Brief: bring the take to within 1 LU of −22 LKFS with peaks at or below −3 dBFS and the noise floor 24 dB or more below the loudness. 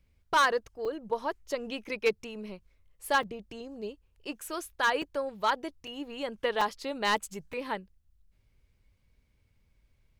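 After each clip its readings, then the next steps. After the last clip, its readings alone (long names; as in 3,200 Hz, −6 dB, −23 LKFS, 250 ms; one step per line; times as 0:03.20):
share of clipped samples 0.3%; peaks flattened at −18.5 dBFS; number of dropouts 6; longest dropout 4.0 ms; integrated loudness −31.5 LKFS; sample peak −18.5 dBFS; target loudness −22.0 LKFS
→ clipped peaks rebuilt −18.5 dBFS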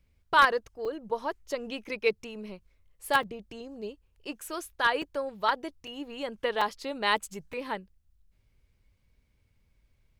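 share of clipped samples 0.0%; number of dropouts 6; longest dropout 4.0 ms
→ repair the gap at 0:00.85/0:03.23/0:05.02/0:05.87/0:06.61/0:07.53, 4 ms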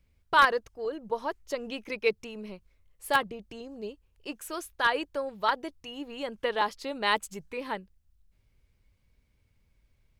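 number of dropouts 0; integrated loudness −30.0 LKFS; sample peak −9.5 dBFS; target loudness −22.0 LKFS
→ level +8 dB
brickwall limiter −3 dBFS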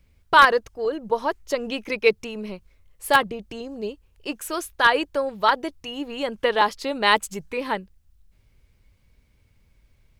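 integrated loudness −22.5 LKFS; sample peak −3.0 dBFS; background noise floor −62 dBFS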